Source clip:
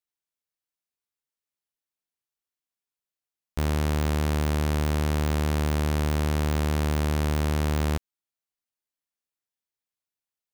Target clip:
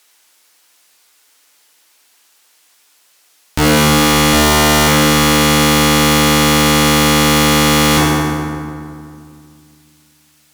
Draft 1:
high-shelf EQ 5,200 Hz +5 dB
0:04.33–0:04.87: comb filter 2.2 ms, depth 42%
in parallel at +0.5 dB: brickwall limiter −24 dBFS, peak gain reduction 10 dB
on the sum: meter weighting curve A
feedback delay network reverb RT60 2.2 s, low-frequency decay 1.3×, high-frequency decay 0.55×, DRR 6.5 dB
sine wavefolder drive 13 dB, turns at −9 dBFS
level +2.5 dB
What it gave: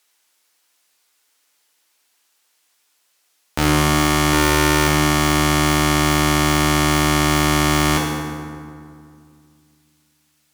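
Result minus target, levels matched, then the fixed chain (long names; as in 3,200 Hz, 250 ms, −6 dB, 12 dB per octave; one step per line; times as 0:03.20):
sine wavefolder: distortion −4 dB
high-shelf EQ 5,200 Hz +5 dB
0:04.33–0:04.87: comb filter 2.2 ms, depth 42%
in parallel at +0.5 dB: brickwall limiter −24 dBFS, peak gain reduction 10 dB
on the sum: meter weighting curve A
feedback delay network reverb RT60 2.2 s, low-frequency decay 1.3×, high-frequency decay 0.55×, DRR 6.5 dB
sine wavefolder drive 24 dB, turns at −9 dBFS
level +2.5 dB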